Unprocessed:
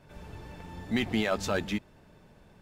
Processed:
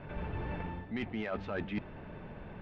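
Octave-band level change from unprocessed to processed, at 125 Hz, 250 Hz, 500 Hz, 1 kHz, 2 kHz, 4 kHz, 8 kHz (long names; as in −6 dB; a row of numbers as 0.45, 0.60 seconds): −1.5 dB, −6.5 dB, −6.5 dB, −4.5 dB, −7.0 dB, −14.0 dB, below −30 dB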